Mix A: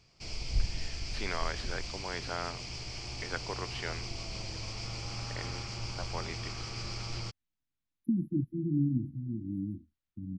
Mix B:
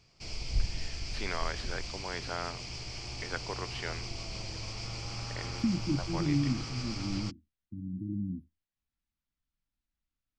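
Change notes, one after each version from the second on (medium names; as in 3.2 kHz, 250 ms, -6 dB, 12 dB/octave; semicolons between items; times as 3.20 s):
second voice: entry -2.45 s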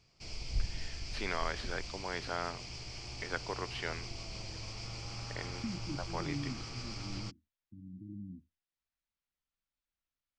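second voice -10.5 dB; background -4.0 dB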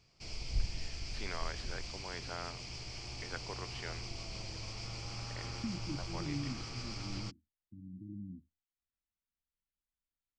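first voice -6.5 dB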